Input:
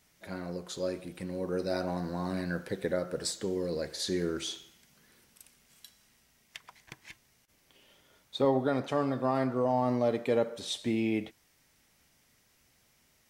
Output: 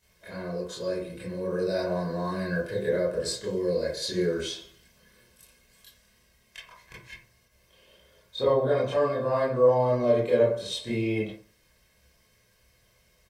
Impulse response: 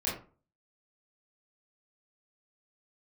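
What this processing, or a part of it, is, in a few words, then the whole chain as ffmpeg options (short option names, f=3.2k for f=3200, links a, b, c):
microphone above a desk: -filter_complex "[0:a]aecho=1:1:1.9:0.6[a];[1:a]atrim=start_sample=2205[b];[a][b]afir=irnorm=-1:irlink=0,volume=-4dB"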